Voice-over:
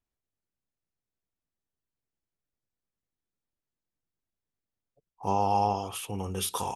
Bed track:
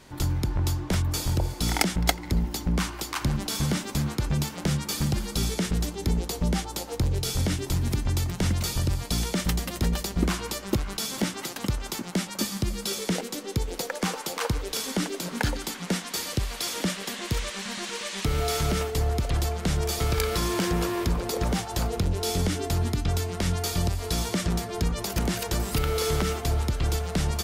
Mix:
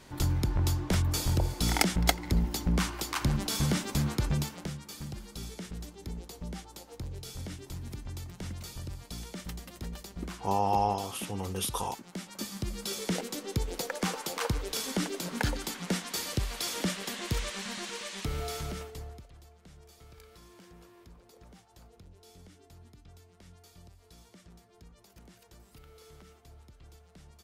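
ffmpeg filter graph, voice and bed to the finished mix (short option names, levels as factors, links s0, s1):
-filter_complex "[0:a]adelay=5200,volume=0.841[s0];[1:a]volume=2.82,afade=t=out:st=4.25:d=0.49:silence=0.237137,afade=t=in:st=12.07:d=1.17:silence=0.281838,afade=t=out:st=17.55:d=1.75:silence=0.0562341[s1];[s0][s1]amix=inputs=2:normalize=0"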